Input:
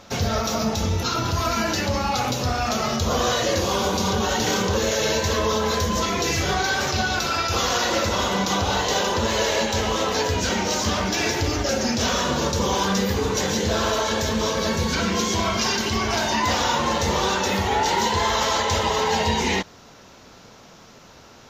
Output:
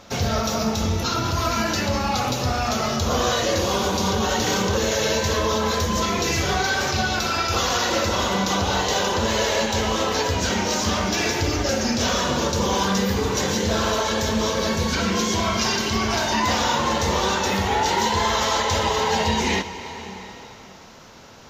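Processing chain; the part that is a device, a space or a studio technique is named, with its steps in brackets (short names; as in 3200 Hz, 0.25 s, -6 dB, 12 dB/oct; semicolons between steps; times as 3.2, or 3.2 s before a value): compressed reverb return (on a send at -3 dB: reverb RT60 2.8 s, pre-delay 27 ms + compressor, threshold -27 dBFS, peak gain reduction 9.5 dB)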